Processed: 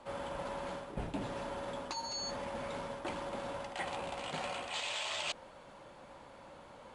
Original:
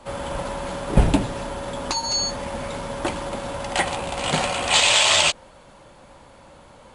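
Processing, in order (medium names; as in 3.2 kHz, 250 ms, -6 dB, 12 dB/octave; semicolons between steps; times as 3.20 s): low-pass 3.8 kHz 6 dB/octave; bass shelf 130 Hz -10 dB; reverse; compression 5:1, threshold -33 dBFS, peak gain reduction 17 dB; reverse; trim -4.5 dB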